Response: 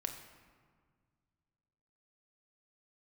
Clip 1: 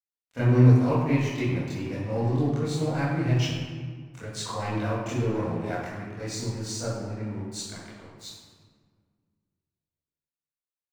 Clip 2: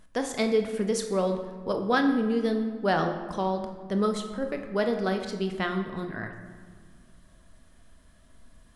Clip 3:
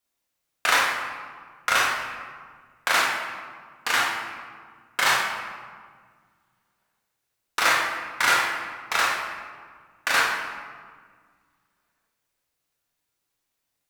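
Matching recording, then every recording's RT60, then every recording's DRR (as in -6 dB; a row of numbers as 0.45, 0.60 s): 2; 1.7, 1.8, 1.7 s; -13.5, 4.5, -4.0 dB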